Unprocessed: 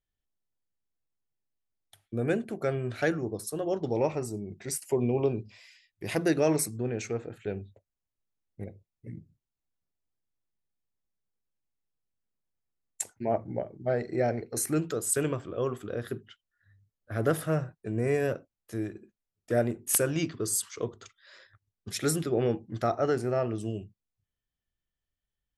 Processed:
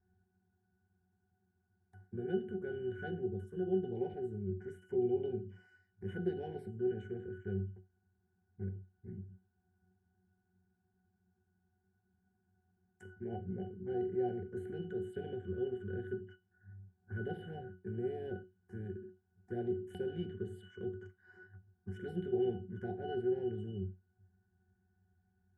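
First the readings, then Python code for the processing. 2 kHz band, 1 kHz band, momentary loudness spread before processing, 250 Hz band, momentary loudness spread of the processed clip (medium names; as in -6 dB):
-13.0 dB, -13.0 dB, 13 LU, -8.0 dB, 16 LU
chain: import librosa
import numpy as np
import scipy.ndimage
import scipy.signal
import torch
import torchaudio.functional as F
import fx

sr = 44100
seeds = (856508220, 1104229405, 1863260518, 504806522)

y = fx.bin_compress(x, sr, power=0.6)
y = fx.peak_eq(y, sr, hz=120.0, db=-5.0, octaves=1.2)
y = fx.env_phaser(y, sr, low_hz=520.0, high_hz=1200.0, full_db=-20.0)
y = fx.low_shelf(y, sr, hz=190.0, db=7.5)
y = fx.octave_resonator(y, sr, note='F#', decay_s=0.22)
y = y * librosa.db_to_amplitude(1.5)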